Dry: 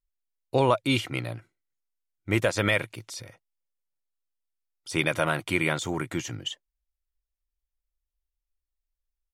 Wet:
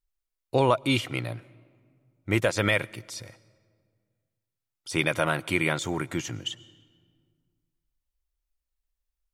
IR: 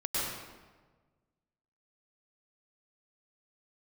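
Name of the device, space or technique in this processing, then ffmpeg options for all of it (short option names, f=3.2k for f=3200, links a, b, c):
ducked reverb: -filter_complex "[0:a]asplit=3[a][b][c];[1:a]atrim=start_sample=2205[d];[b][d]afir=irnorm=-1:irlink=0[e];[c]apad=whole_len=411788[f];[e][f]sidechaincompress=threshold=-39dB:ratio=6:attack=16:release=1030,volume=-14dB[g];[a][g]amix=inputs=2:normalize=0"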